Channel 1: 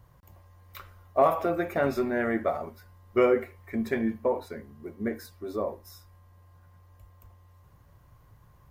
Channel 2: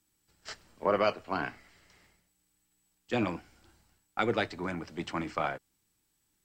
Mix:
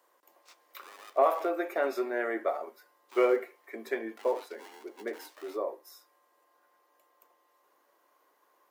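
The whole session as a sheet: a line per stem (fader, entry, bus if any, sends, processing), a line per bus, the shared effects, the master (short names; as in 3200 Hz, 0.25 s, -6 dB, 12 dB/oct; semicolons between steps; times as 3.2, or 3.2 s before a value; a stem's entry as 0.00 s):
-2.5 dB, 0.00 s, no send, dry
-3.5 dB, 0.00 s, no send, limiter -25.5 dBFS, peak gain reduction 10.5 dB; polarity switched at an audio rate 610 Hz; auto duck -11 dB, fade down 0.40 s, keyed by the first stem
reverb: off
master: steep high-pass 320 Hz 36 dB/oct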